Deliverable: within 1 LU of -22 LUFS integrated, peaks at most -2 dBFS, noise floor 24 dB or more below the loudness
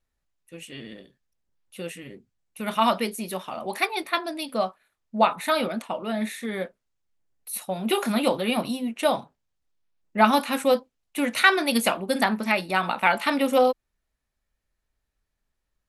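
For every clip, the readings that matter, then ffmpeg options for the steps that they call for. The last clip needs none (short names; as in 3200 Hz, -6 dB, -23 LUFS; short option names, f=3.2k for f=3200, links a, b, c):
loudness -24.5 LUFS; peak -3.0 dBFS; loudness target -22.0 LUFS
-> -af "volume=2.5dB,alimiter=limit=-2dB:level=0:latency=1"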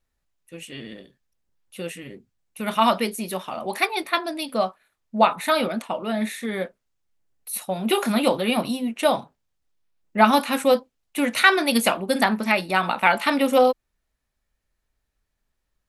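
loudness -22.0 LUFS; peak -2.0 dBFS; noise floor -78 dBFS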